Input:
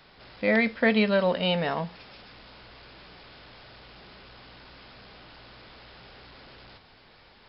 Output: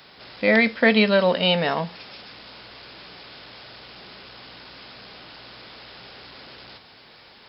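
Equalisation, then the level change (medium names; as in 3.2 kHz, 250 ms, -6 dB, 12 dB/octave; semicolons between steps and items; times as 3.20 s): high-pass 190 Hz 6 dB/octave; bass shelf 440 Hz +3 dB; treble shelf 3.6 kHz +8.5 dB; +4.0 dB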